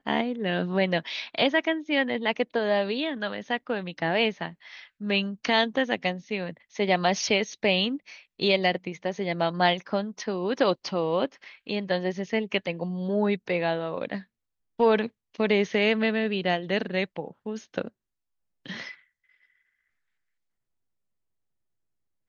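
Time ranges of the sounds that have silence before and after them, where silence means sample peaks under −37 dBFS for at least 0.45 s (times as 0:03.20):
0:14.79–0:17.88
0:18.66–0:18.91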